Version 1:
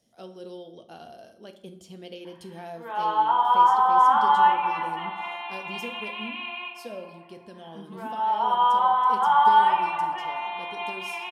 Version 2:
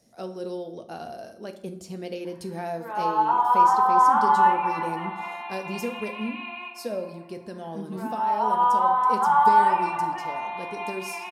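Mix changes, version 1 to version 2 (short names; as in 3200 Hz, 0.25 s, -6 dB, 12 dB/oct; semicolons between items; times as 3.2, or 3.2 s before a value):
speech +7.5 dB; master: add bell 3200 Hz -14.5 dB 0.25 oct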